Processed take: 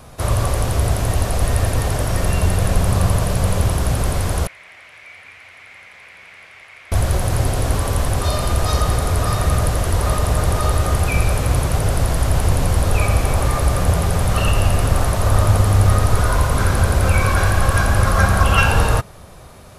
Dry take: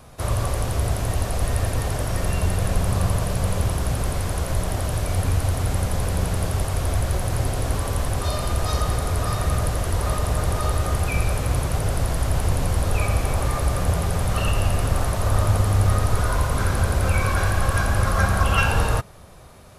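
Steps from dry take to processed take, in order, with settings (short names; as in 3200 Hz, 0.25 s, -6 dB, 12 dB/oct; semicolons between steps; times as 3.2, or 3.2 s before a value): 4.47–6.92 band-pass 2200 Hz, Q 6.3; gain +5 dB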